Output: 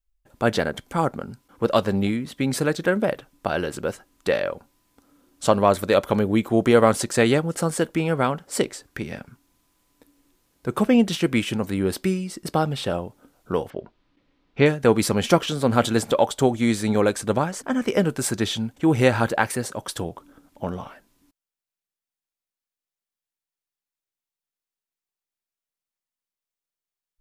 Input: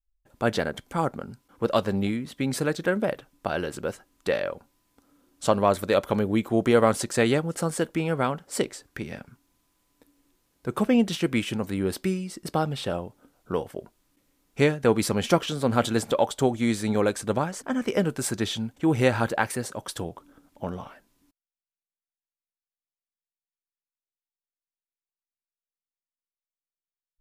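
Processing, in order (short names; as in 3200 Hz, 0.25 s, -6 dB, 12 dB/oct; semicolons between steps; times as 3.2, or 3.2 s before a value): 13.7–14.66 LPF 4100 Hz 24 dB/oct; gain +3.5 dB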